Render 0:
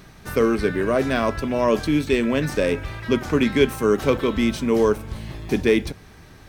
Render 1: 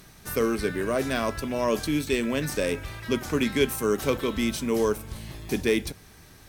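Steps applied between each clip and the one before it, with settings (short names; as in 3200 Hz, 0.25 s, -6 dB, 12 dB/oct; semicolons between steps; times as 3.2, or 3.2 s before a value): bell 13000 Hz +12.5 dB 1.9 oct; gain -6 dB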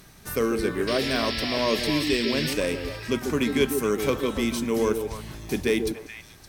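painted sound noise, 0.87–2.54, 1700–5600 Hz -32 dBFS; delay with a stepping band-pass 0.142 s, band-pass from 320 Hz, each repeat 1.4 oct, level -3.5 dB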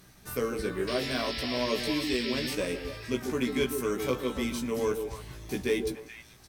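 doubler 16 ms -3.5 dB; gain -7 dB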